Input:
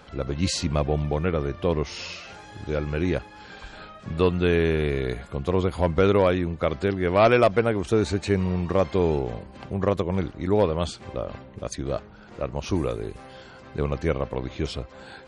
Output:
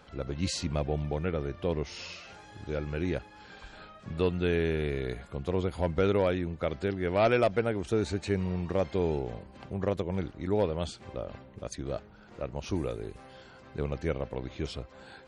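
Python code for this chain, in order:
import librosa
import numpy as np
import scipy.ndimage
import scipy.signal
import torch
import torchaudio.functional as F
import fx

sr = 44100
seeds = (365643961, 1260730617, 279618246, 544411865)

y = fx.dynamic_eq(x, sr, hz=1100.0, q=6.0, threshold_db=-48.0, ratio=4.0, max_db=-7)
y = F.gain(torch.from_numpy(y), -6.5).numpy()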